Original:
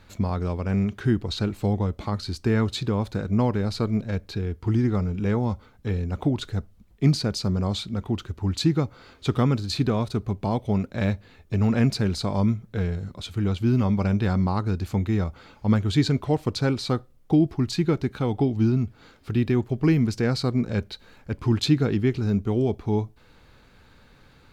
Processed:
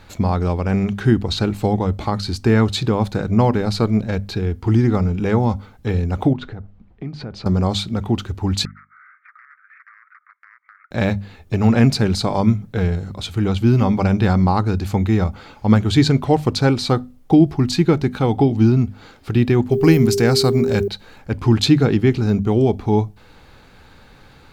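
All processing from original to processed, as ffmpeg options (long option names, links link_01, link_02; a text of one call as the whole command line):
ffmpeg -i in.wav -filter_complex "[0:a]asettb=1/sr,asplit=3[link_01][link_02][link_03];[link_01]atrim=end=6.334[link_04];[link_02]atrim=start=6.33:end=7.46,asetpts=PTS-STARTPTS,afade=type=in:duration=0.004:curve=qsin,afade=type=out:start_time=1.126:duration=0.004:curve=qsin,lowpass=2200,acompressor=threshold=-34dB:ratio=5:attack=3.2:release=140:knee=1:detection=peak[link_05];[link_03]atrim=start=7.456[link_06];[link_04][link_05]acrossfade=duration=0.004:curve1=hsin:curve2=qsin[link_07];[link_07][link_06]acrossfade=duration=0.004:curve1=qsin:curve2=hsin,asettb=1/sr,asplit=3[link_08][link_09][link_10];[link_08]atrim=end=8.654[link_11];[link_09]atrim=start=8.65:end=10.91,asetpts=PTS-STARTPTS,afade=type=in:duration=0.004:curve=qsin,afade=type=out:start_time=2.256:duration=0.004:curve=qsin,aeval=exprs='0.0944*(abs(mod(val(0)/0.0944+3,4)-2)-1)':channel_layout=same,asuperpass=centerf=1600:order=12:qfactor=1.7,acompressor=threshold=-50dB:ratio=12:attack=3.2:release=140:knee=1:detection=peak[link_12];[link_10]atrim=start=10.906[link_13];[link_11][link_12]acrossfade=duration=0.004:curve1=hsin:curve2=qsin[link_14];[link_14][link_13]acrossfade=duration=0.004:curve1=qsin:curve2=hsin,asettb=1/sr,asplit=3[link_15][link_16][link_17];[link_15]atrim=end=19.714[link_18];[link_16]atrim=start=19.71:end=20.88,asetpts=PTS-STARTPTS,afade=type=in:duration=0.004:curve=qsin,afade=type=out:start_time=1.166:duration=0.004:curve=qsin,aemphasis=mode=production:type=50fm,aeval=exprs='val(0)+0.0562*sin(2*PI*400*n/s)':channel_layout=same[link_19];[link_17]atrim=start=20.876[link_20];[link_18][link_19]acrossfade=duration=0.004:curve1=hsin:curve2=qsin[link_21];[link_21][link_20]acrossfade=duration=0.004:curve1=qsin:curve2=hsin,equalizer=frequency=800:width=7.2:gain=5.5,bandreject=frequency=50:width_type=h:width=6,bandreject=frequency=100:width_type=h:width=6,bandreject=frequency=150:width_type=h:width=6,bandreject=frequency=200:width_type=h:width=6,bandreject=frequency=250:width_type=h:width=6,volume=7.5dB" out.wav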